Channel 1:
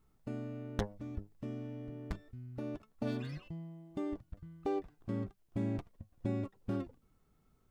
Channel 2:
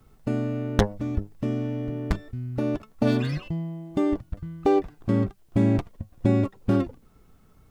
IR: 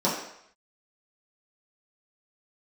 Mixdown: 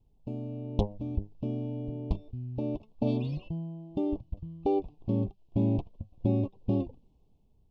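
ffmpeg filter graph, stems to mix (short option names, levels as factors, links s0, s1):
-filter_complex "[0:a]lowpass=4600,dynaudnorm=f=200:g=7:m=2.99,volume=0.596[s0];[1:a]lowshelf=f=160:g=11,volume=0.112[s1];[s0][s1]amix=inputs=2:normalize=0,asuperstop=centerf=1600:order=8:qfactor=1,highshelf=f=6300:g=-9"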